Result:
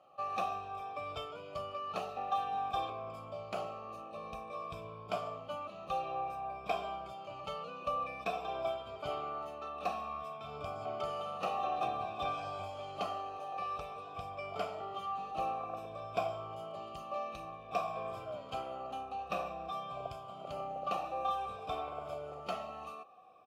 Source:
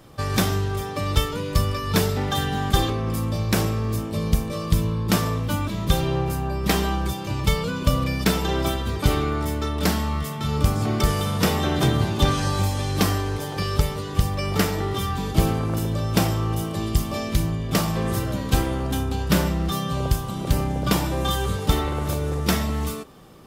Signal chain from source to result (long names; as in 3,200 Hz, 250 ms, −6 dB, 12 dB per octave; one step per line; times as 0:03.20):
rippled gain that drifts along the octave scale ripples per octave 1.7, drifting −0.53 Hz, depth 9 dB
formant filter a
comb filter 1.6 ms, depth 32%
level −2.5 dB